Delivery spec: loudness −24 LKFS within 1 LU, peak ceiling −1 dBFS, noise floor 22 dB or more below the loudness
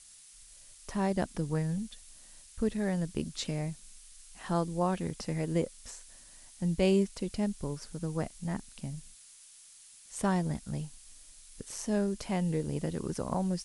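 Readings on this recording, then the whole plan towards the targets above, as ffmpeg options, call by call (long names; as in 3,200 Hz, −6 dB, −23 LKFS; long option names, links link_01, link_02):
background noise floor −55 dBFS; target noise floor −56 dBFS; integrated loudness −33.5 LKFS; sample peak −14.0 dBFS; target loudness −24.0 LKFS
→ -af "afftdn=noise_reduction=6:noise_floor=-55"
-af "volume=9.5dB"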